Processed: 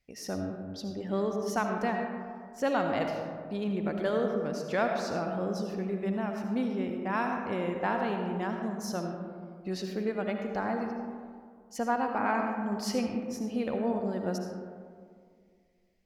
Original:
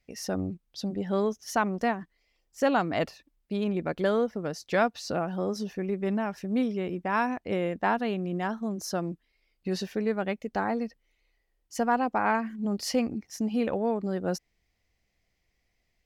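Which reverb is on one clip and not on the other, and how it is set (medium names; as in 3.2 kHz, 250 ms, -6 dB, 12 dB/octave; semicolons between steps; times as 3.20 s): algorithmic reverb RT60 2.1 s, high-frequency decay 0.35×, pre-delay 35 ms, DRR 3 dB; trim -4.5 dB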